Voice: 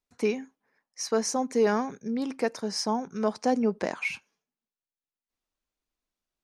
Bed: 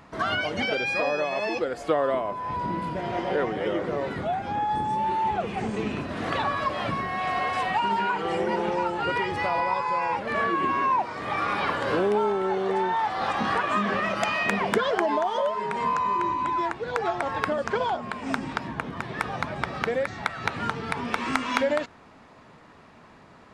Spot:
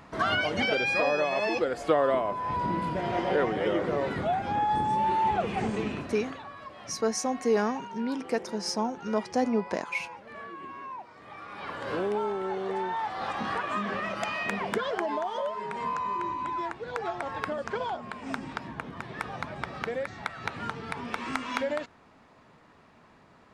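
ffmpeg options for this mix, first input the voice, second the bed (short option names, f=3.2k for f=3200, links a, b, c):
-filter_complex "[0:a]adelay=5900,volume=-1.5dB[a];[1:a]volume=11dB,afade=t=out:st=5.65:d=0.72:silence=0.141254,afade=t=in:st=11.5:d=0.51:silence=0.281838[b];[a][b]amix=inputs=2:normalize=0"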